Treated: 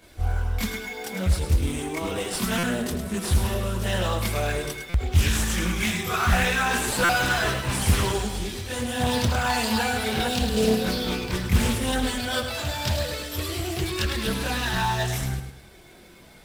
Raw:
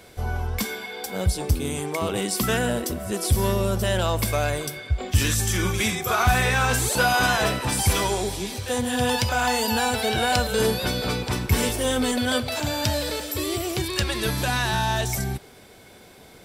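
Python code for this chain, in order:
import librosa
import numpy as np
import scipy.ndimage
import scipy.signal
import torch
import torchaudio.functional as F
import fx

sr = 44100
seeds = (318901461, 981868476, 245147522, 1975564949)

p1 = fx.chorus_voices(x, sr, voices=4, hz=0.13, base_ms=25, depth_ms=3.2, mix_pct=65)
p2 = fx.peak_eq(p1, sr, hz=630.0, db=-5.5, octaves=2.6)
p3 = fx.sample_hold(p2, sr, seeds[0], rate_hz=8900.0, jitter_pct=0)
p4 = p2 + (p3 * librosa.db_to_amplitude(-5.0))
p5 = fx.spec_repair(p4, sr, seeds[1], start_s=10.3, length_s=0.46, low_hz=580.0, high_hz=2400.0, source='after')
p6 = p5 + fx.echo_feedback(p5, sr, ms=105, feedback_pct=36, wet_db=-8.5, dry=0)
p7 = fx.buffer_glitch(p6, sr, at_s=(2.58, 4.89, 7.04), block=256, repeats=8)
y = fx.doppler_dist(p7, sr, depth_ms=0.57)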